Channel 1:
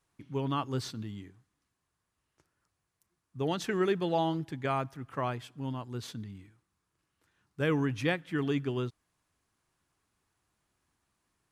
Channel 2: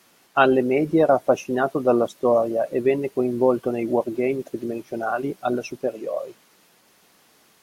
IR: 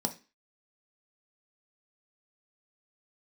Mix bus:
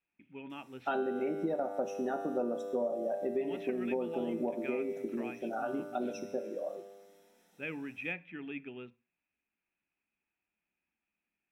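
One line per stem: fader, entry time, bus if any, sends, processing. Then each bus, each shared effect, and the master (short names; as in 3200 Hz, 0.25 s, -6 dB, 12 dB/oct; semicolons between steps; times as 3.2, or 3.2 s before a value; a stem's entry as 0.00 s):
-18.5 dB, 0.00 s, send -8.5 dB, synth low-pass 2500 Hz, resonance Q 13
-4.0 dB, 0.50 s, send -6 dB, resonator 99 Hz, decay 1.5 s, harmonics all, mix 80%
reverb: on, RT60 0.30 s, pre-delay 3 ms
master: compressor 5:1, threshold -30 dBFS, peak gain reduction 9.5 dB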